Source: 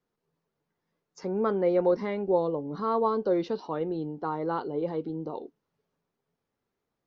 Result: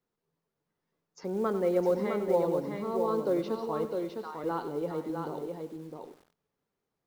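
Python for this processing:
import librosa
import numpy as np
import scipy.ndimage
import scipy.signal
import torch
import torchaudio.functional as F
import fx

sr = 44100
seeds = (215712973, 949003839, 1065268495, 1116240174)

y = fx.peak_eq(x, sr, hz=1800.0, db=-15.0, octaves=1.7, at=(2.6, 3.07), fade=0.02)
y = fx.highpass(y, sr, hz=1400.0, slope=12, at=(3.85, 4.44))
y = fx.quant_float(y, sr, bits=4)
y = y + 10.0 ** (-5.0 / 20.0) * np.pad(y, (int(658 * sr / 1000.0), 0))[:len(y)]
y = fx.echo_crushed(y, sr, ms=96, feedback_pct=55, bits=8, wet_db=-12)
y = y * 10.0 ** (-3.0 / 20.0)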